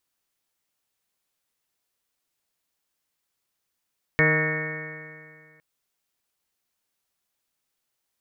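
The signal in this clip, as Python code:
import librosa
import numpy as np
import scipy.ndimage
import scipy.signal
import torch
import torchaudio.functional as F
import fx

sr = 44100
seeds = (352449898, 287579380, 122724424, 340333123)

y = fx.additive_stiff(sr, length_s=1.41, hz=154.0, level_db=-22.0, upper_db=(-6.0, -1.5, -7.0, -17.0, -14, -11.5, -13, -9, -9, 3, -13, 0.5), decay_s=2.13, stiffness=0.0013)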